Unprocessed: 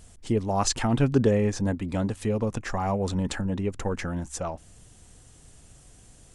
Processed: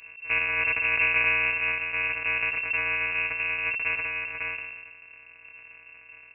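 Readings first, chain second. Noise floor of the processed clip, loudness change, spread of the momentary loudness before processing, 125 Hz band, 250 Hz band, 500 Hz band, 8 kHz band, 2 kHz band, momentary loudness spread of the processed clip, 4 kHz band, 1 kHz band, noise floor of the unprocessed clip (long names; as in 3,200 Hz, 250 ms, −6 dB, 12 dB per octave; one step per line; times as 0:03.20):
−51 dBFS, +2.5 dB, 10 LU, −21.5 dB, −25.0 dB, −14.0 dB, below −40 dB, +17.5 dB, 10 LU, −1.0 dB, −5.0 dB, −53 dBFS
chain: samples sorted by size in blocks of 256 samples
comb filter 4 ms, depth 59%
soft clipping −15 dBFS, distortion −18 dB
voice inversion scrambler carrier 2,700 Hz
level that may fall only so fast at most 37 dB per second
level −1.5 dB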